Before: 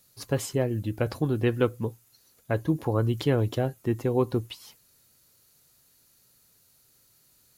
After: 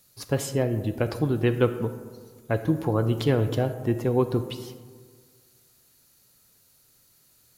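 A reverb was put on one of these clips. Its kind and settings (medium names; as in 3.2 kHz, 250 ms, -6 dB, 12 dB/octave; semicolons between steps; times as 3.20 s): algorithmic reverb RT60 1.7 s, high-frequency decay 0.35×, pre-delay 5 ms, DRR 10 dB; trim +1.5 dB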